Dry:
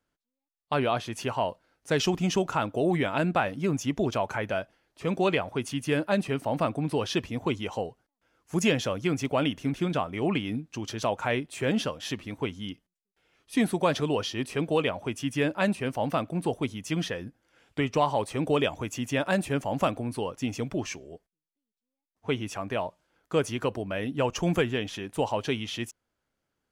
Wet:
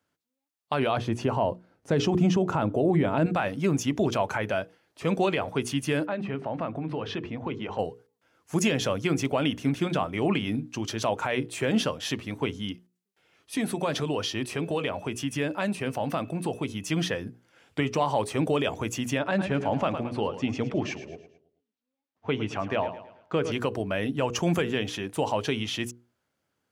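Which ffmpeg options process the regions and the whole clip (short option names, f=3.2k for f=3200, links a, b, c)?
-filter_complex "[0:a]asettb=1/sr,asplit=3[a][b][c];[a]atrim=end=0.974[d];[b]atrim=start=0.97:end=3.26,asetpts=PTS-STARTPTS,afade=t=in:d=0.004:c=qsin,afade=t=out:st=2.286:d=0.004:c=qsin,acrossover=split=8000[e][f];[f]acompressor=threshold=-55dB:ratio=4:attack=1:release=60[g];[e][g]amix=inputs=2:normalize=0,tiltshelf=f=1.1k:g=7[h];[c]atrim=start=3.256[i];[d][h]acrossfade=d=0.004:c1=hsin:c2=qsin[j];[j][i]acrossfade=d=0.004:c1=qsin:c2=hsin,asettb=1/sr,asplit=3[k][l][m];[k]atrim=end=6.064[n];[l]atrim=start=6.06:end=7.79,asetpts=PTS-STARTPTS,afade=t=in:d=0.004:c=qsin,afade=t=out:st=1.726:d=0.004:c=qsin,lowpass=2.5k,bandreject=f=50:t=h:w=6,bandreject=f=100:t=h:w=6,bandreject=f=150:t=h:w=6,bandreject=f=200:t=h:w=6,bandreject=f=250:t=h:w=6,bandreject=f=300:t=h:w=6,bandreject=f=350:t=h:w=6,bandreject=f=400:t=h:w=6,bandreject=f=450:t=h:w=6,acompressor=threshold=-33dB:ratio=2.5:attack=3.2:release=140:knee=1:detection=peak[o];[m]atrim=start=7.786[p];[n][o]acrossfade=d=0.004:c1=hsin:c2=qsin[q];[q][p]acrossfade=d=0.004:c1=qsin:c2=hsin,asettb=1/sr,asplit=3[r][s][t];[r]atrim=end=13.554[u];[s]atrim=start=13.55:end=16.85,asetpts=PTS-STARTPTS,afade=t=in:d=0.004:c=qsin,afade=t=out:st=3.296:d=0.004:c=qsin,acompressor=threshold=-29dB:ratio=2.5:attack=3.2:release=140:knee=1:detection=peak,aeval=exprs='val(0)+0.001*sin(2*PI*2600*n/s)':c=same[v];[t]atrim=start=16.846[w];[u][v]acrossfade=d=0.004:c1=hsin:c2=qsin[x];[x][w]acrossfade=d=0.004:c1=qsin:c2=hsin,asettb=1/sr,asplit=3[y][z][aa];[y]atrim=end=19.194[ab];[z]atrim=start=19.19:end=23.52,asetpts=PTS-STARTPTS,afade=t=in:d=0.004:c=qsin,afade=t=out:st=4.326:d=0.004:c=qsin,lowpass=3.8k,aecho=1:1:109|218|327|436:0.224|0.0918|0.0376|0.0154,atrim=end_sample=190953[ac];[aa]atrim=start=23.516[ad];[ab][ac]acrossfade=d=0.004:c1=hsin:c2=qsin[ae];[ae][ad]acrossfade=d=0.004:c1=qsin:c2=hsin,highpass=f=68:w=0.5412,highpass=f=68:w=1.3066,bandreject=f=60:t=h:w=6,bandreject=f=120:t=h:w=6,bandreject=f=180:t=h:w=6,bandreject=f=240:t=h:w=6,bandreject=f=300:t=h:w=6,bandreject=f=360:t=h:w=6,bandreject=f=420:t=h:w=6,bandreject=f=480:t=h:w=6,alimiter=limit=-18dB:level=0:latency=1:release=61,volume=3.5dB"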